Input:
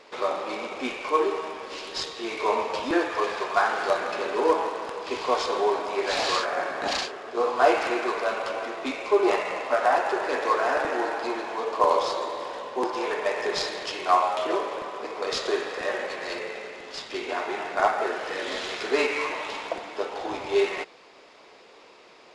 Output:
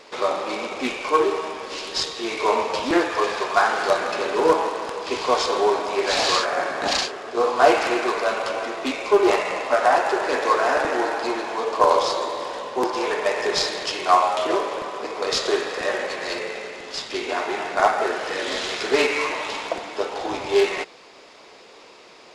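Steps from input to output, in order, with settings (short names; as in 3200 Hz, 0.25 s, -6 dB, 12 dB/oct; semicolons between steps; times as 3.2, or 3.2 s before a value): tone controls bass +2 dB, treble +5 dB; Doppler distortion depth 0.15 ms; gain +4 dB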